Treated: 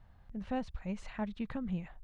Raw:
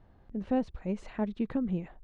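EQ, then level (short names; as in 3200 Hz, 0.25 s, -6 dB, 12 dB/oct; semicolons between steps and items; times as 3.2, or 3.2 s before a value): bell 360 Hz -14 dB 1.5 oct; +1.5 dB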